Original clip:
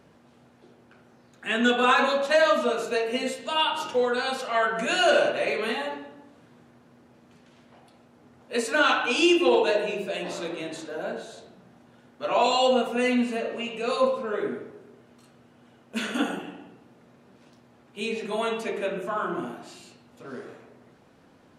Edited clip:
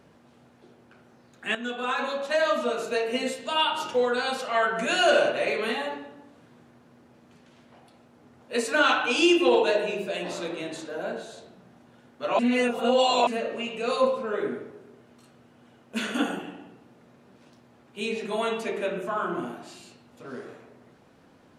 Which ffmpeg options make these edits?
-filter_complex "[0:a]asplit=4[a][b][c][d];[a]atrim=end=1.55,asetpts=PTS-STARTPTS,afade=t=out:st=1.546:d=0.004:c=hsin:silence=0.211349[e];[b]atrim=start=1.55:end=12.392,asetpts=PTS-STARTPTS,afade=t=in:d=1.57:silence=0.211349[f];[c]atrim=start=12.388:end=13.272,asetpts=PTS-STARTPTS,areverse[g];[d]atrim=start=13.268[h];[e][f]concat=n=2:v=0:a=1[i];[i][g]acrossfade=d=0.004:c1=hsin:c2=hsin[j];[j][h]acrossfade=d=0.004:c1=hsin:c2=hsin"

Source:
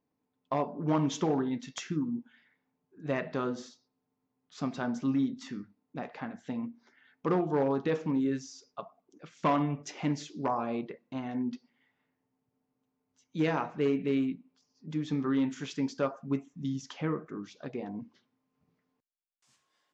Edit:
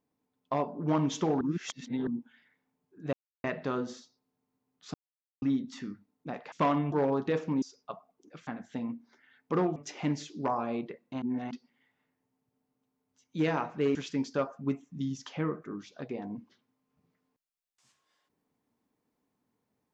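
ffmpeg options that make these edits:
-filter_complex "[0:a]asplit=14[a][b][c][d][e][f][g][h][i][j][k][l][m][n];[a]atrim=end=1.412[o];[b]atrim=start=1.408:end=2.072,asetpts=PTS-STARTPTS,areverse[p];[c]atrim=start=2.068:end=3.13,asetpts=PTS-STARTPTS,afade=t=out:st=1.058:d=0.004:c=hsin,apad=pad_dur=0.31[q];[d]atrim=start=3.13:end=4.63,asetpts=PTS-STARTPTS,afade=t=in:d=0.004:c=hsin,afade=t=out:st=1.496:d=0.004:c=hsin[r];[e]atrim=start=4.63:end=5.11,asetpts=PTS-STARTPTS,volume=0[s];[f]atrim=start=5.11:end=6.212,asetpts=PTS-STARTPTS,afade=t=in:d=0.004:c=hsin[t];[g]atrim=start=9.358:end=9.762[u];[h]atrim=start=7.498:end=8.202[v];[i]atrim=start=8.508:end=9.362[w];[j]atrim=start=6.208:end=7.502[x];[k]atrim=start=9.758:end=11.222[y];[l]atrim=start=11.218:end=11.512,asetpts=PTS-STARTPTS,areverse[z];[m]atrim=start=11.508:end=13.952[aa];[n]atrim=start=15.588[ab];[o][p]acrossfade=d=0.004:c1=hsin:c2=hsin[ac];[q][r][s][t]concat=n=4:v=0:a=1[ad];[ac][ad]acrossfade=d=0.004:c1=hsin:c2=hsin[ae];[ae][u]acrossfade=d=0.004:c1=hsin:c2=hsin[af];[af][v]acrossfade=d=0.004:c1=hsin:c2=hsin[ag];[ag][w]acrossfade=d=0.004:c1=hsin:c2=hsin[ah];[ah][x]acrossfade=d=0.004:c1=hsin:c2=hsin[ai];[ai][y]acrossfade=d=0.004:c1=hsin:c2=hsin[aj];[aj][z]acrossfade=d=0.004:c1=hsin:c2=hsin[ak];[ak][aa]acrossfade=d=0.004:c1=hsin:c2=hsin[al];[al][ab]acrossfade=d=0.004:c1=hsin:c2=hsin"

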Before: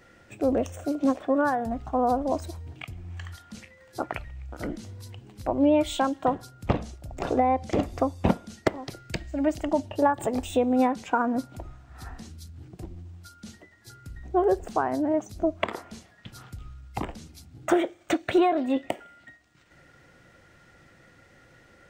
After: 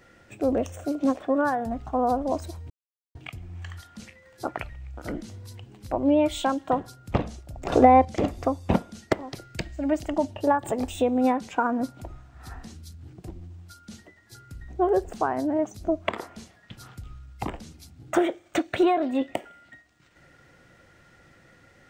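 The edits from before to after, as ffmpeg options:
-filter_complex "[0:a]asplit=4[a][b][c][d];[a]atrim=end=2.7,asetpts=PTS-STARTPTS,afade=t=out:st=2.696:d=0.004:c=hsin,apad=pad_dur=0.45[e];[b]atrim=start=2.7:end=7.272,asetpts=PTS-STARTPTS,afade=t=in:d=0.004:c=hsin[f];[c]atrim=start=7.268:end=7.602,asetpts=PTS-STARTPTS,volume=7.5dB[g];[d]atrim=start=7.598[h];[e][f]concat=n=2:v=0:a=1[i];[i][g]acrossfade=d=0.004:c1=hsin:c2=hsin[j];[j][h]acrossfade=d=0.004:c1=hsin:c2=hsin"

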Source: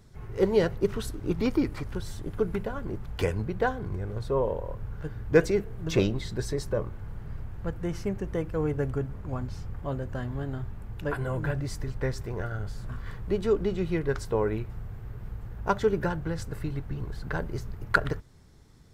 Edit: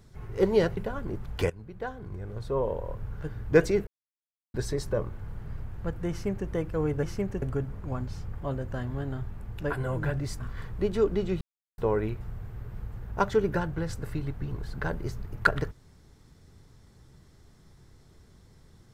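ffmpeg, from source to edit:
-filter_complex "[0:a]asplit=10[a][b][c][d][e][f][g][h][i][j];[a]atrim=end=0.772[k];[b]atrim=start=2.568:end=3.3,asetpts=PTS-STARTPTS,afade=t=out:st=0.728:d=0.004:c=hsin:silence=0.125893[l];[c]atrim=start=3.3:end=5.67,asetpts=PTS-STARTPTS,afade=t=in:d=1.4:silence=0.125893,afade=t=out:st=2.366:d=0.004:c=hsin[m];[d]atrim=start=5.67:end=6.34,asetpts=PTS-STARTPTS,volume=0[n];[e]atrim=start=6.34:end=8.832,asetpts=PTS-STARTPTS,afade=t=in:d=0.004:c=hsin[o];[f]atrim=start=7.898:end=8.292[p];[g]atrim=start=8.828:end=11.802[q];[h]atrim=start=12.878:end=13.9,asetpts=PTS-STARTPTS,afade=t=out:st=1.018:d=0.004:c=hsin[r];[i]atrim=start=13.9:end=14.27,asetpts=PTS-STARTPTS,volume=0[s];[j]atrim=start=14.27,asetpts=PTS-STARTPTS,afade=t=in:d=0.004:c=hsin[t];[l][m][n][o]concat=n=4:v=0:a=1[u];[k][u]acrossfade=d=0.004:c1=hsin:c2=hsin[v];[v][p]acrossfade=d=0.004:c1=hsin:c2=hsin[w];[w][q]acrossfade=d=0.004:c1=hsin:c2=hsin[x];[r][s][t]concat=n=3:v=0:a=1[y];[x][y]acrossfade=d=0.004:c1=hsin:c2=hsin"

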